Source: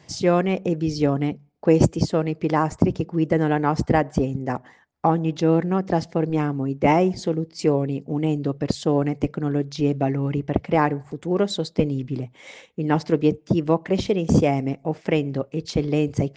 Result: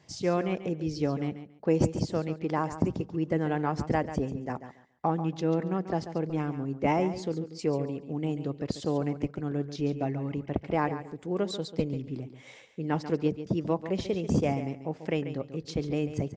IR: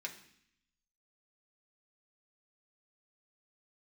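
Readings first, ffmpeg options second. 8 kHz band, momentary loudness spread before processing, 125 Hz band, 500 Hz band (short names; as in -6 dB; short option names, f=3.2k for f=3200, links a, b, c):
-8.0 dB, 7 LU, -8.0 dB, -8.0 dB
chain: -af "aecho=1:1:140|280|420:0.266|0.0532|0.0106,volume=-8.5dB"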